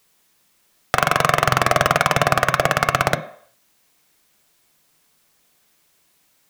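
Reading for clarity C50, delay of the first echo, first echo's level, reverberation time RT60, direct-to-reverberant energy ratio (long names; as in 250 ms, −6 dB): 12.5 dB, no echo audible, no echo audible, 0.60 s, 7.5 dB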